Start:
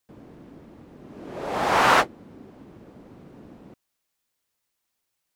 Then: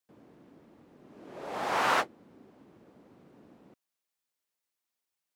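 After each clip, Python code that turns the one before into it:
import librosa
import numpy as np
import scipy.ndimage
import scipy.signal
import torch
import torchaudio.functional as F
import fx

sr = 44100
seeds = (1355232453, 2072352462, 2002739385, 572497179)

y = fx.highpass(x, sr, hz=190.0, slope=6)
y = y * librosa.db_to_amplitude(-8.5)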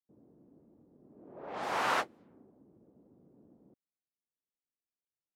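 y = fx.env_lowpass(x, sr, base_hz=400.0, full_db=-30.0)
y = y * librosa.db_to_amplitude(-4.0)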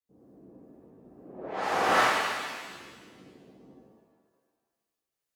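y = fx.harmonic_tremolo(x, sr, hz=2.2, depth_pct=50, crossover_hz=660.0)
y = fx.rev_shimmer(y, sr, seeds[0], rt60_s=1.5, semitones=7, shimmer_db=-8, drr_db=-9.5)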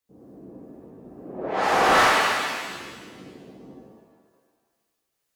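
y = 10.0 ** (-21.0 / 20.0) * np.tanh(x / 10.0 ** (-21.0 / 20.0))
y = y * librosa.db_to_amplitude(9.0)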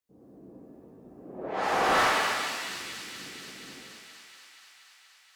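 y = fx.echo_wet_highpass(x, sr, ms=238, feedback_pct=80, hz=3200.0, wet_db=-5.0)
y = y * librosa.db_to_amplitude(-6.0)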